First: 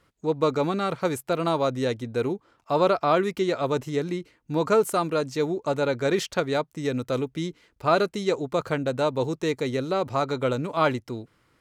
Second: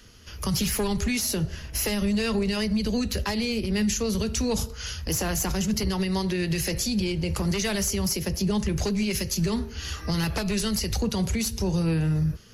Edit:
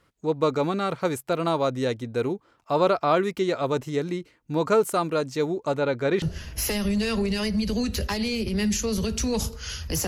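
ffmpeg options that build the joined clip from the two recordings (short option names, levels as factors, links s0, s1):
-filter_complex "[0:a]asettb=1/sr,asplit=3[s0][s1][s2];[s0]atrim=end=5.764[s3];[s1]atrim=start=5.76:end=6.22,asetpts=PTS-STARTPTS,afade=t=in:d=0.004:c=qsin,afade=t=out:st=0.456:d=0.004:c=qsin,acrossover=split=4400[s4][s5];[s5]acompressor=threshold=0.00178:ratio=4:attack=1:release=60[s6];[s4][s6]amix=inputs=2:normalize=0[s7];[s2]atrim=start=6.216[s8];[s3][s7]acrossfade=d=0.004:c1=hsin:c2=qsin[s9];[s9][s8]acrossfade=d=0.004:c1=qsin:c2=hsin,apad=whole_dur=10.07,atrim=end=10.07,atrim=end=6.222[s10];[1:a]atrim=start=1.388:end=5.24[s11];[s10][s11]acrossfade=d=0.004:c1=hsin:c2=hsin"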